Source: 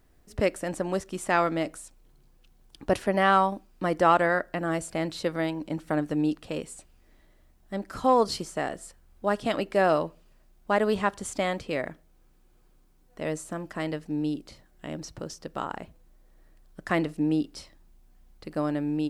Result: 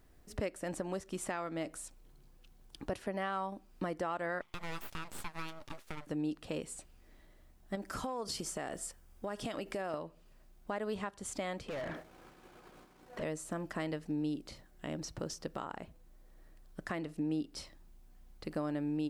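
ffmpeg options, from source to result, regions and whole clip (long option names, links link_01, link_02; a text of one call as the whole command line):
ffmpeg -i in.wav -filter_complex "[0:a]asettb=1/sr,asplit=3[link_01][link_02][link_03];[link_01]atrim=end=4.414[link_04];[link_02]atrim=start=4.41:end=6.07,asetpts=PTS-STARTPTS,afade=type=in:duration=0.004:curve=qsin,afade=type=out:start_time=1.656:duration=0.004:curve=qsin,highpass=580,aeval=exprs='abs(val(0))':channel_layout=same[link_05];[link_03]atrim=start=6.066[link_06];[link_04][link_05]acrossfade=duration=0.004:curve1=hsin:curve2=qsin[link_07];[link_07][link_06]acrossfade=duration=0.004:curve1=qsin:curve2=hsin,asettb=1/sr,asplit=3[link_08][link_09][link_10];[link_08]atrim=end=7.754[link_11];[link_09]atrim=start=7.75:end=9.94,asetpts=PTS-STARTPTS,afade=type=in:duration=0.004:curve=qsin,afade=type=out:start_time=2.186:duration=0.004:curve=qsin,bass=frequency=250:gain=-1,treble=frequency=4000:gain=4,bandreject=frequency=4100:width=13,acompressor=threshold=-33dB:ratio=6:attack=3.2:release=140:knee=1:detection=peak[link_12];[link_10]atrim=start=9.936[link_13];[link_11][link_12]acrossfade=duration=0.004:curve1=hsin:curve2=qsin[link_14];[link_14][link_13]acrossfade=duration=0.004:curve1=qsin:curve2=hsin,asettb=1/sr,asplit=3[link_15][link_16][link_17];[link_15]atrim=end=11.684[link_18];[link_16]atrim=start=11.68:end=13.23,asetpts=PTS-STARTPTS,afade=type=in:duration=0.004:curve=qsin,afade=type=out:start_time=1.546:duration=0.004:curve=qsin,agate=range=-33dB:threshold=-54dB:ratio=3:release=100:detection=peak,acompressor=threshold=-52dB:ratio=2:attack=3.2:release=140:knee=1:detection=peak,asplit=2[link_19][link_20];[link_20]highpass=frequency=720:poles=1,volume=35dB,asoftclip=type=tanh:threshold=-30dB[link_21];[link_19][link_21]amix=inputs=2:normalize=0,lowpass=frequency=1600:poles=1,volume=-6dB[link_22];[link_17]atrim=start=13.226[link_23];[link_18][link_22]acrossfade=duration=0.004:curve1=hsin:curve2=qsin[link_24];[link_24][link_23]acrossfade=duration=0.004:curve1=qsin:curve2=hsin,acompressor=threshold=-33dB:ratio=2.5,alimiter=level_in=1dB:limit=-24dB:level=0:latency=1:release=484,volume=-1dB,volume=-1dB" out.wav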